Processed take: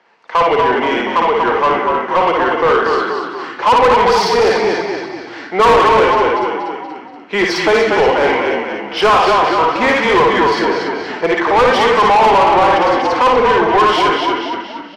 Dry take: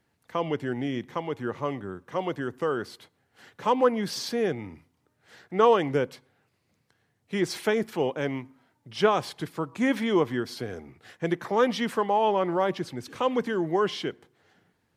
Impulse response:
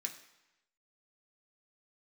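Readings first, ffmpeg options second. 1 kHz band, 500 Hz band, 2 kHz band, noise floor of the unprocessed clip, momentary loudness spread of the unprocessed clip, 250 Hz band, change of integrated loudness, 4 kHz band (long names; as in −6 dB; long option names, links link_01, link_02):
+19.0 dB, +13.5 dB, +19.0 dB, −73 dBFS, 11 LU, +9.0 dB, +14.5 dB, +16.5 dB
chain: -filter_complex "[0:a]highpass=290,equalizer=frequency=290:width_type=q:width=4:gain=-6,equalizer=frequency=1000:width_type=q:width=4:gain=6,equalizer=frequency=1700:width_type=q:width=4:gain=-4,equalizer=frequency=3800:width_type=q:width=4:gain=-5,lowpass=frequency=5400:width=0.5412,lowpass=frequency=5400:width=1.3066,asplit=7[link_01][link_02][link_03][link_04][link_05][link_06][link_07];[link_02]adelay=238,afreqshift=-31,volume=-6dB[link_08];[link_03]adelay=476,afreqshift=-62,volume=-12.6dB[link_09];[link_04]adelay=714,afreqshift=-93,volume=-19.1dB[link_10];[link_05]adelay=952,afreqshift=-124,volume=-25.7dB[link_11];[link_06]adelay=1190,afreqshift=-155,volume=-32.2dB[link_12];[link_07]adelay=1428,afreqshift=-186,volume=-38.8dB[link_13];[link_01][link_08][link_09][link_10][link_11][link_12][link_13]amix=inputs=7:normalize=0,asplit=2[link_14][link_15];[1:a]atrim=start_sample=2205,adelay=55[link_16];[link_15][link_16]afir=irnorm=-1:irlink=0,volume=1dB[link_17];[link_14][link_17]amix=inputs=2:normalize=0,asplit=2[link_18][link_19];[link_19]highpass=frequency=720:poles=1,volume=28dB,asoftclip=type=tanh:threshold=-3.5dB[link_20];[link_18][link_20]amix=inputs=2:normalize=0,lowpass=frequency=2200:poles=1,volume=-6dB,volume=1.5dB"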